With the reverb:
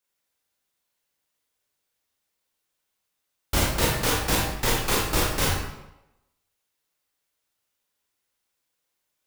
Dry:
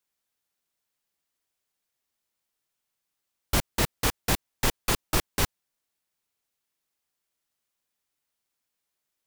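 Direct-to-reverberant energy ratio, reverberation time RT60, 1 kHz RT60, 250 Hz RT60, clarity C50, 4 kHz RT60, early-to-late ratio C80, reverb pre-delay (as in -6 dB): -4.5 dB, 0.90 s, 0.90 s, 0.90 s, 0.5 dB, 0.70 s, 3.5 dB, 22 ms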